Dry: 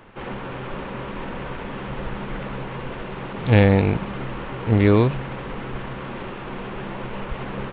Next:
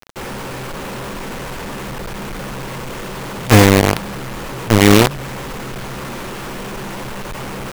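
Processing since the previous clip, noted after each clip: companded quantiser 2-bit; gain -1 dB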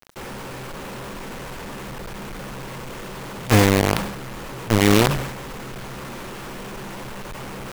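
sustainer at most 58 dB/s; gain -6.5 dB

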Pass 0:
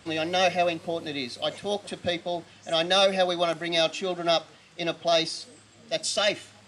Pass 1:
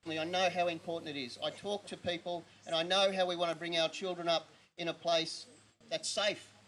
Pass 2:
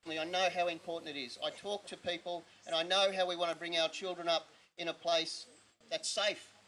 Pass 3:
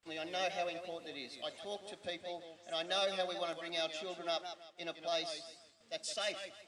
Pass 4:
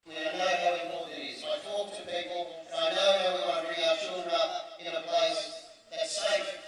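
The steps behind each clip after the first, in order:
gate with hold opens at -43 dBFS; gain -8.5 dB
bell 120 Hz -9.5 dB 2.2 oct
warbling echo 0.162 s, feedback 31%, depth 108 cents, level -9.5 dB; gain -4.5 dB
reverb RT60 0.35 s, pre-delay 20 ms, DRR -9 dB; gain -1.5 dB

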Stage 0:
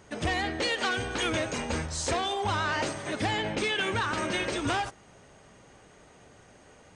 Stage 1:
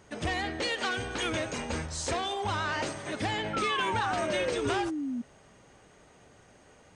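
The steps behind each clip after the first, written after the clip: painted sound fall, 3.53–5.22, 230–1400 Hz -30 dBFS; gain -2.5 dB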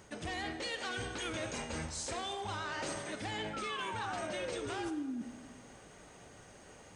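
high shelf 6200 Hz +6 dB; reverse; compressor 6:1, threshold -38 dBFS, peak gain reduction 12.5 dB; reverse; plate-style reverb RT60 1.5 s, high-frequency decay 0.8×, DRR 9 dB; gain +1 dB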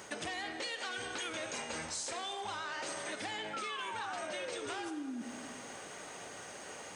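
HPF 530 Hz 6 dB/oct; compressor 6:1, threshold -48 dBFS, peak gain reduction 11.5 dB; gain +10.5 dB

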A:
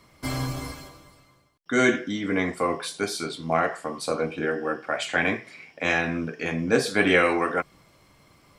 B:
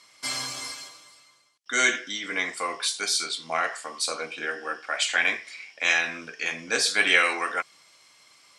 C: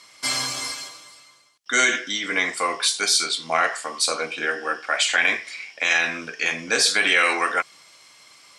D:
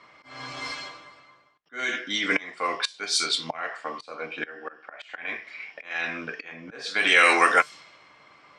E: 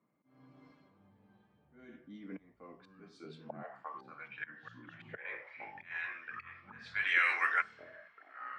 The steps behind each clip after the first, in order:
weighting filter ITU-R 468; gain -3 dB
limiter -13.5 dBFS, peak gain reduction 7 dB; gain +6 dB
auto swell 0.681 s; low-pass opened by the level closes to 1500 Hz, open at -20 dBFS; resonator 150 Hz, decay 0.16 s, harmonics all, mix 30%; gain +6 dB
band-pass sweep 200 Hz -> 1800 Hz, 2.97–4.23; echoes that change speed 0.468 s, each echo -5 st, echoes 3, each echo -6 dB; gain -8 dB

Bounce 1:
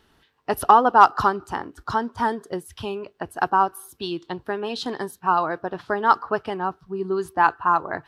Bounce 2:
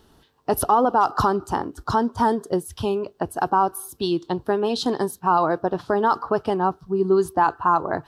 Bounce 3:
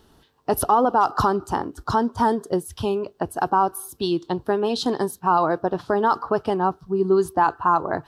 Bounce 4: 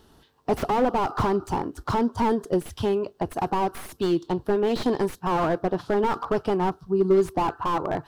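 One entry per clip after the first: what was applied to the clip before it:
bell 2100 Hz -11.5 dB 1.3 oct; limiter -16 dBFS, peak gain reduction 11.5 dB; gain +7 dB
nothing audible
tracing distortion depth 0.17 ms; slew limiter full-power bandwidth 72 Hz

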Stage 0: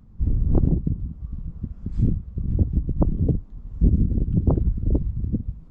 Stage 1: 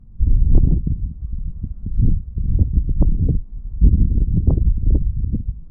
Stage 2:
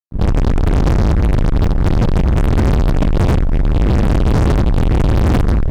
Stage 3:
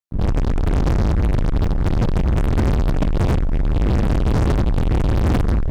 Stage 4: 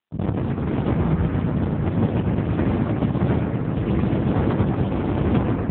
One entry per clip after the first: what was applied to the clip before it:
tilt -3 dB/oct; gain -6.5 dB
opening faded in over 0.65 s; negative-ratio compressor -20 dBFS, ratio -1; fuzz box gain 44 dB, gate -49 dBFS; gain +2.5 dB
limiter -15 dBFS, peak gain reduction 9 dB; gain +1.5 dB
analogue delay 0.123 s, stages 2048, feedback 64%, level -5 dB; reverb RT60 2.1 s, pre-delay 83 ms, DRR 11 dB; AMR-NB 6.7 kbps 8000 Hz

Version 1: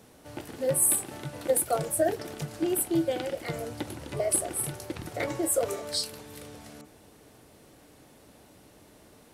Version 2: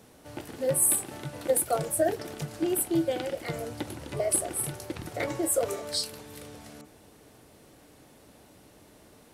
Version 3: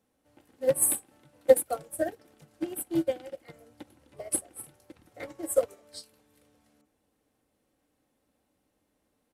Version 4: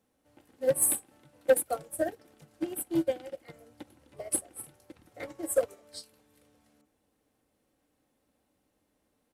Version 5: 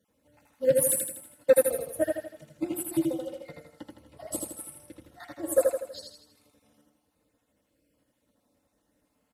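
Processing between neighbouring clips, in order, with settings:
nothing audible
bell 5000 Hz -2.5 dB 1.1 oct; comb 3.8 ms, depth 36%; upward expander 2.5:1, over -35 dBFS; gain +6 dB
soft clip -14 dBFS, distortion -13 dB
random spectral dropouts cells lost 39%; notch comb 390 Hz; feedback echo 81 ms, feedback 47%, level -3 dB; gain +3 dB

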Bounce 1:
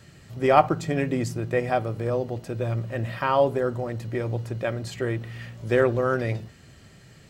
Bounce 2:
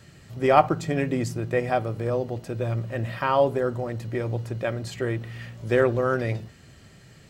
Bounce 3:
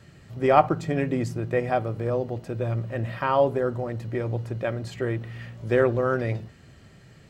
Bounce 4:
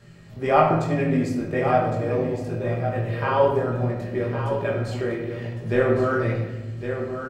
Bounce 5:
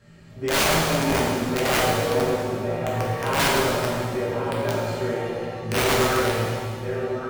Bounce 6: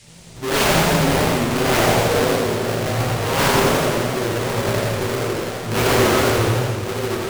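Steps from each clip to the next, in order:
nothing audible
high shelf 3500 Hz -7 dB
chorus 1.1 Hz, delay 17 ms, depth 4.5 ms; echo 1.11 s -8.5 dB; shoebox room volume 590 m³, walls mixed, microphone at 1.3 m; gain +2 dB
wrapped overs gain 14 dB; shimmer reverb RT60 1.5 s, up +7 st, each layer -8 dB, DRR -3 dB; gain -4.5 dB
half-waves squared off; band noise 1900–9300 Hz -48 dBFS; warbling echo 85 ms, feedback 68%, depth 173 cents, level -4 dB; gain -2.5 dB

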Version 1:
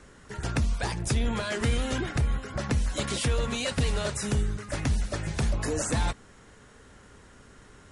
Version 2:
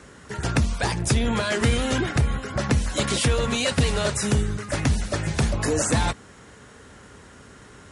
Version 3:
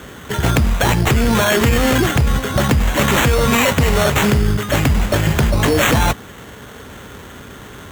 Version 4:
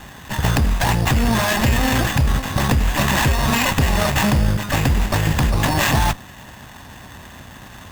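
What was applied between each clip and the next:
HPF 63 Hz; gain +6.5 dB
in parallel at +0.5 dB: negative-ratio compressor -25 dBFS, ratio -1; on the sum: sample-rate reducer 4900 Hz, jitter 0%; gain +3.5 dB
minimum comb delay 1.1 ms; gain -1.5 dB

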